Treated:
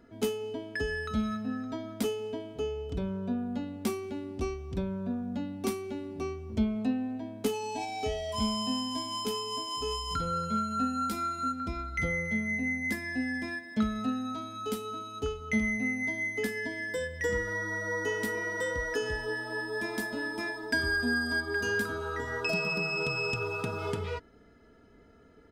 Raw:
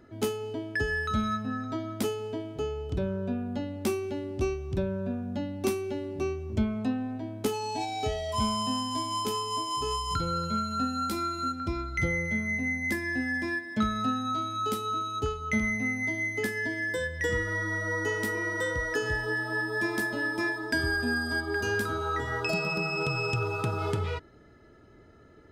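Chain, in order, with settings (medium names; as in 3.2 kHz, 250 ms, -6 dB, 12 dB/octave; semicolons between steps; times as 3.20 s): comb 4.3 ms, depth 49%; trim -3 dB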